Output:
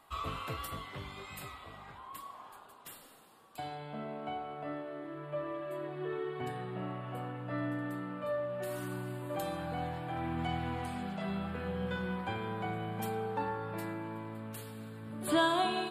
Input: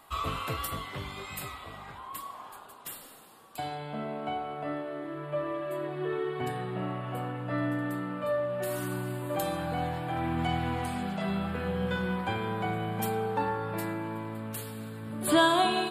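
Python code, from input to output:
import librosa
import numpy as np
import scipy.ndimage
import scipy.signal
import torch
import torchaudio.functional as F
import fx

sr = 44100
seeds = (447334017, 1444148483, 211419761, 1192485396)

y = fx.high_shelf(x, sr, hz=7300.0, db=-5.0)
y = y * librosa.db_to_amplitude(-5.5)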